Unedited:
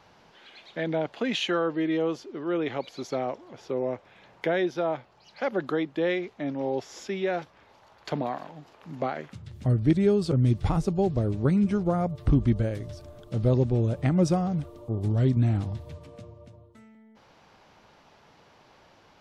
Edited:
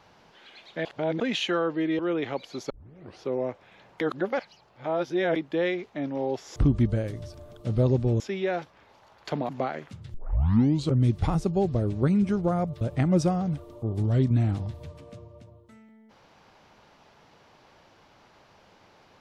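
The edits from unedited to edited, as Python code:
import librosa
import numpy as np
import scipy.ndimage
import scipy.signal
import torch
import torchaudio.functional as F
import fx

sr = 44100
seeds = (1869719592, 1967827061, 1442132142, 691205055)

y = fx.edit(x, sr, fx.reverse_span(start_s=0.85, length_s=0.35),
    fx.cut(start_s=1.99, length_s=0.44),
    fx.tape_start(start_s=3.14, length_s=0.53),
    fx.reverse_span(start_s=4.45, length_s=1.35),
    fx.cut(start_s=8.29, length_s=0.62),
    fx.tape_start(start_s=9.56, length_s=0.78),
    fx.move(start_s=12.23, length_s=1.64, to_s=7.0), tone=tone)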